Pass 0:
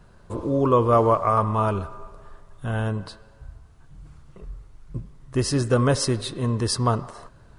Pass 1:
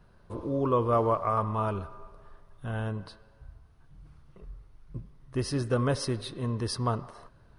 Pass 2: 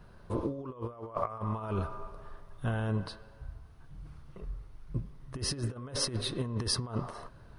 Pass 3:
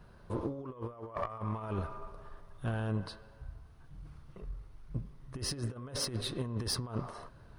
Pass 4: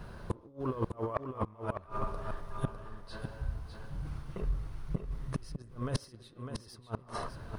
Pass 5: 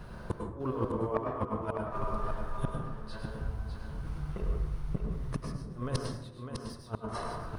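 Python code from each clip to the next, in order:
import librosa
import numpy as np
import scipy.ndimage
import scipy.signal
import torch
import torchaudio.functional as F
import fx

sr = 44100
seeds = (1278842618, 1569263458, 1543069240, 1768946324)

y1 = fx.peak_eq(x, sr, hz=7400.0, db=-13.0, octaves=0.34)
y1 = F.gain(torch.from_numpy(y1), -7.0).numpy()
y2 = fx.over_compress(y1, sr, threshold_db=-33.0, ratio=-0.5)
y3 = fx.diode_clip(y2, sr, knee_db=-28.0)
y3 = F.gain(torch.from_numpy(y3), -1.5).numpy()
y4 = fx.gate_flip(y3, sr, shuts_db=-29.0, range_db=-29)
y4 = y4 + 10.0 ** (-7.0 / 20.0) * np.pad(y4, (int(603 * sr / 1000.0), 0))[:len(y4)]
y4 = F.gain(torch.from_numpy(y4), 10.0).numpy()
y5 = fx.rev_plate(y4, sr, seeds[0], rt60_s=0.77, hf_ratio=0.4, predelay_ms=90, drr_db=1.0)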